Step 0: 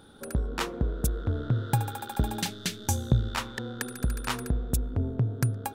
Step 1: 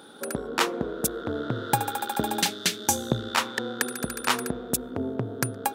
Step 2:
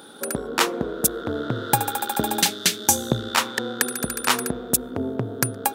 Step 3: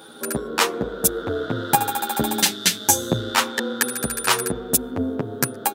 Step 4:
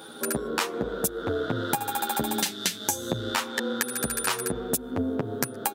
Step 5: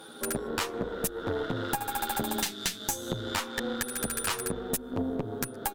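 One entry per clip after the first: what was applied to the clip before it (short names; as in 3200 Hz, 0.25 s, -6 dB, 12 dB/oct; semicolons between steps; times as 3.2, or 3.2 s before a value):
HPF 280 Hz 12 dB/oct; gain +7.5 dB
high shelf 6700 Hz +6 dB; gain +3 dB
endless flanger 9.4 ms -0.57 Hz; gain +4.5 dB
compressor 12:1, threshold -23 dBFS, peak gain reduction 13 dB
tube stage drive 21 dB, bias 0.75; gain +1 dB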